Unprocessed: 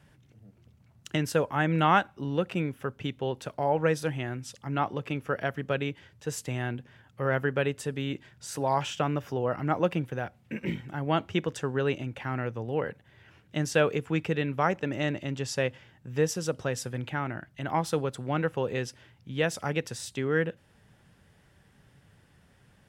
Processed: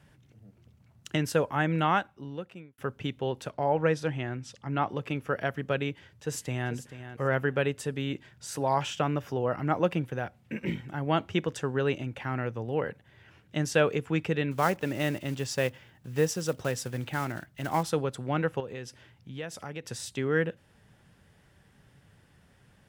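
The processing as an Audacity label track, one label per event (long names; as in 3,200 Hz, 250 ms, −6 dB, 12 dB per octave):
1.520000	2.780000	fade out
3.500000	4.890000	high-frequency loss of the air 61 metres
5.900000	6.720000	delay throw 440 ms, feedback 15%, level −11.5 dB
14.510000	17.850000	one scale factor per block 5 bits
18.600000	19.880000	downward compressor 2 to 1, threshold −41 dBFS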